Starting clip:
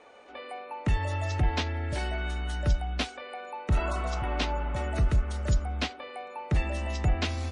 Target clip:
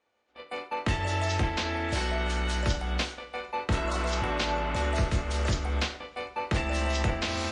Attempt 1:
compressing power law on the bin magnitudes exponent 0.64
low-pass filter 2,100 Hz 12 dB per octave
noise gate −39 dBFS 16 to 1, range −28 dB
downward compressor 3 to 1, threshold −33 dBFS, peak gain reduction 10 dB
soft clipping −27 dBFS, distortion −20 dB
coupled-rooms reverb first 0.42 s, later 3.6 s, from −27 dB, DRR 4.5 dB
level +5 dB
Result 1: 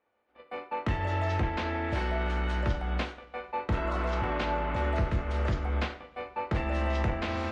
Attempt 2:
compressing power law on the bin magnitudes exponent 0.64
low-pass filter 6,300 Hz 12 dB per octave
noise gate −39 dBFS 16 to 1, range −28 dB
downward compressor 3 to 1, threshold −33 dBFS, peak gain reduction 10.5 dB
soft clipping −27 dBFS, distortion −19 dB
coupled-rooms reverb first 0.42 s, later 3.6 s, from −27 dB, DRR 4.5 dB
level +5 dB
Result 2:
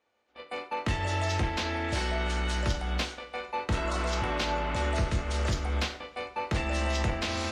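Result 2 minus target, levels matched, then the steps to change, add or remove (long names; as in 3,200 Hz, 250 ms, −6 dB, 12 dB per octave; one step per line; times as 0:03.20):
soft clipping: distortion +13 dB
change: soft clipping −19 dBFS, distortion −32 dB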